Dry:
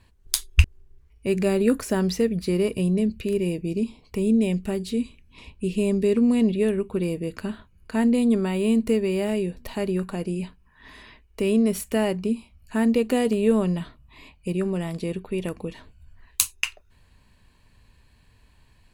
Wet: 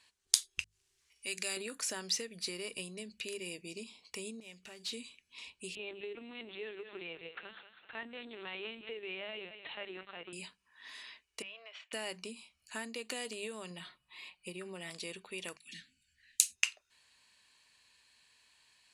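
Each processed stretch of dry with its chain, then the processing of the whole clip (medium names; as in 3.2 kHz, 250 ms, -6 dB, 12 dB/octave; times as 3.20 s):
0.61–1.57 s: treble shelf 2 kHz +11 dB + compression 1.5:1, threshold -40 dBFS
4.40–4.93 s: median filter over 5 samples + peaking EQ 290 Hz -3.5 dB 1.5 oct + compression 5:1, threshold -33 dBFS
5.75–10.33 s: bass shelf 320 Hz -6 dB + thinning echo 193 ms, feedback 47%, high-pass 440 Hz, level -9.5 dB + LPC vocoder at 8 kHz pitch kept
11.42–11.93 s: elliptic band-pass 640–3100 Hz, stop band 60 dB + compression, threshold -40 dBFS
13.70–14.90 s: peaking EQ 6.4 kHz -10 dB 0.74 oct + comb 5.5 ms, depth 72%
15.57–16.56 s: elliptic band-stop 260–1700 Hz + phase dispersion lows, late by 111 ms, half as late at 480 Hz
whole clip: hum notches 50/100/150/200 Hz; compression 10:1, threshold -23 dBFS; frequency weighting ITU-R 468; trim -8.5 dB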